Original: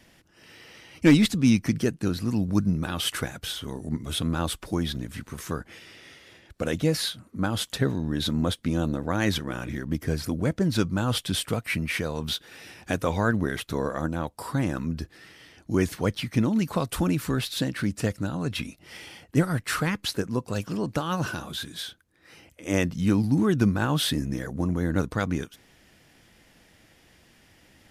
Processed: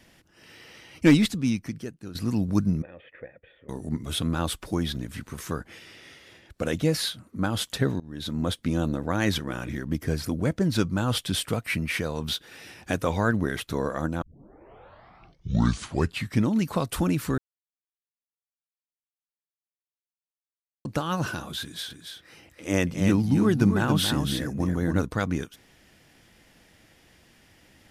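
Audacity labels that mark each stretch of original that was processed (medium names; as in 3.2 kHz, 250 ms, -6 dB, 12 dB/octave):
1.100000	2.150000	fade out quadratic, to -13.5 dB
2.820000	3.690000	cascade formant filter e
8.000000	8.570000	fade in, from -21.5 dB
14.220000	14.220000	tape start 2.27 s
17.380000	20.850000	mute
21.620000	25.030000	delay 281 ms -6 dB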